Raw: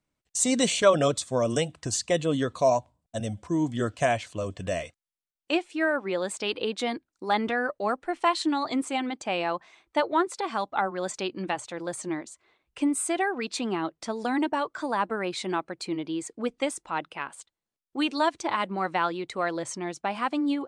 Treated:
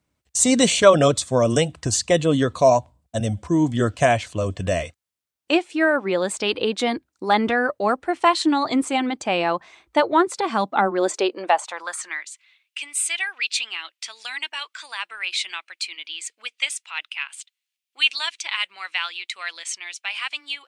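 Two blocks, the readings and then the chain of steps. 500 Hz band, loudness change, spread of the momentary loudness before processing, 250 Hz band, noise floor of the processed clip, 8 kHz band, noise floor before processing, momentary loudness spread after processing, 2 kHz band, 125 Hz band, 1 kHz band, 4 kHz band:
+6.0 dB, +6.0 dB, 9 LU, +4.5 dB, -84 dBFS, +6.5 dB, under -85 dBFS, 13 LU, +7.0 dB, +8.0 dB, +5.0 dB, +9.0 dB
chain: high-pass sweep 62 Hz -> 2600 Hz, 10.01–12.38; gain +6.5 dB

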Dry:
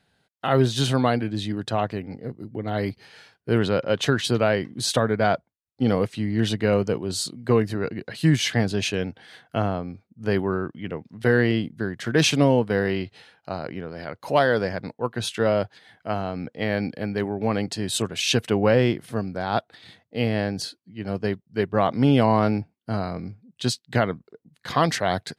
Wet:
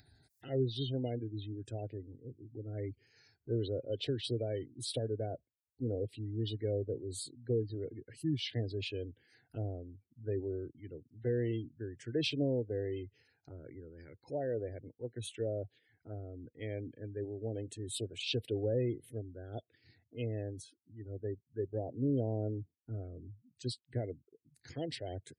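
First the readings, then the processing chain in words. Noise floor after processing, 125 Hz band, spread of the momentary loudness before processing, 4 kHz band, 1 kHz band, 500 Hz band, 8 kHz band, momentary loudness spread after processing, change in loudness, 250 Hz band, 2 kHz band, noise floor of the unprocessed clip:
under -85 dBFS, -12.0 dB, 13 LU, -14.5 dB, -27.0 dB, -13.5 dB, -17.0 dB, 15 LU, -14.5 dB, -15.5 dB, -23.5 dB, -76 dBFS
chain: HPF 51 Hz 12 dB/oct; spectral gate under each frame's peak -20 dB strong; fixed phaser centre 460 Hz, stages 4; envelope phaser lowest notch 510 Hz, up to 1200 Hz, full sweep at -23.5 dBFS; upward compressor, threshold -40 dBFS; bell 1200 Hz -12 dB 2.6 oct; gain -5 dB

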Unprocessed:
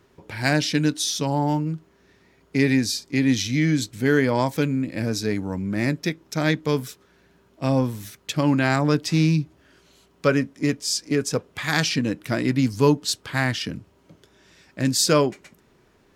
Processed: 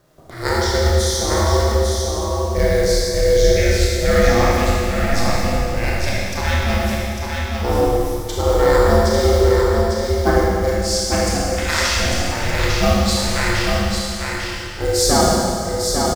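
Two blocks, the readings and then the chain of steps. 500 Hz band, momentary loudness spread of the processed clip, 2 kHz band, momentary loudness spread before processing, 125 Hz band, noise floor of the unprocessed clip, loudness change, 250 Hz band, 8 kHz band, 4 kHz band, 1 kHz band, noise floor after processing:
+9.0 dB, 8 LU, +5.0 dB, 8 LU, +4.5 dB, -60 dBFS, +5.0 dB, -0.5 dB, +7.0 dB, +6.0 dB, +9.0 dB, -26 dBFS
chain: ring modulator 230 Hz; LFO notch square 0.14 Hz 430–2600 Hz; companded quantiser 6-bit; echo 0.85 s -4.5 dB; Schroeder reverb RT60 2.3 s, combs from 25 ms, DRR -5 dB; gain +2.5 dB

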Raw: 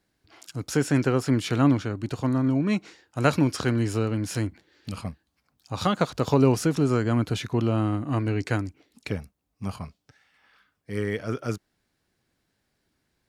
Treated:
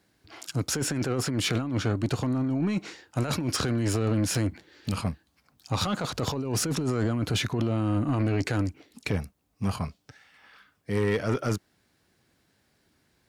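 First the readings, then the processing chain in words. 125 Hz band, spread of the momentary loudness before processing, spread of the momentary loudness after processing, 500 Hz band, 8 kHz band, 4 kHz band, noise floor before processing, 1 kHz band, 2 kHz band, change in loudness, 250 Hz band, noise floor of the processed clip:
-1.5 dB, 15 LU, 8 LU, -3.5 dB, +5.0 dB, +4.0 dB, -76 dBFS, -4.0 dB, -1.5 dB, -3.0 dB, -3.5 dB, -70 dBFS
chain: HPF 54 Hz; negative-ratio compressor -27 dBFS, ratio -1; soft clip -21.5 dBFS, distortion -15 dB; gain +3 dB

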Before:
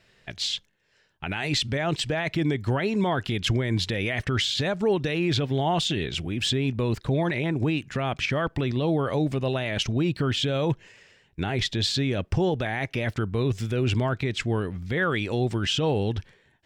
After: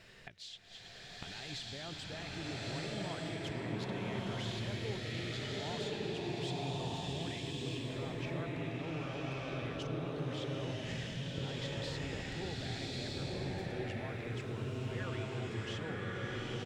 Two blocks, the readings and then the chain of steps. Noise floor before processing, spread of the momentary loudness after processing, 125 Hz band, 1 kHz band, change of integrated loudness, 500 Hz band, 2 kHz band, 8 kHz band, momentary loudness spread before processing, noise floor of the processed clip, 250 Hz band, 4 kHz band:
-64 dBFS, 4 LU, -13.0 dB, -13.5 dB, -14.0 dB, -14.0 dB, -13.0 dB, -13.5 dB, 4 LU, -51 dBFS, -14.0 dB, -14.0 dB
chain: spectral delete 9.78–10.38, 260–1500 Hz; frequency-shifting echo 0.108 s, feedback 61%, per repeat -30 Hz, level -24 dB; flipped gate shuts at -33 dBFS, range -24 dB; bloom reverb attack 1.26 s, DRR -6.5 dB; gain +3 dB

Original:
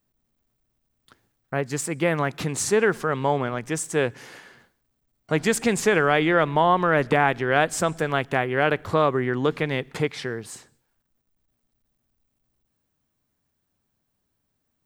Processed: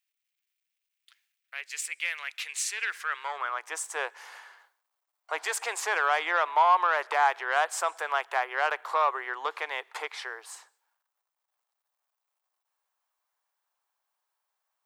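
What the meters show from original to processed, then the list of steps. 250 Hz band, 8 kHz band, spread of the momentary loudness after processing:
under -25 dB, -4.5 dB, 14 LU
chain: steep high-pass 350 Hz 36 dB/oct; added harmonics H 5 -20 dB, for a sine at -6.5 dBFS; high-pass sweep 2400 Hz -> 920 Hz, 2.75–3.69; gain -8 dB

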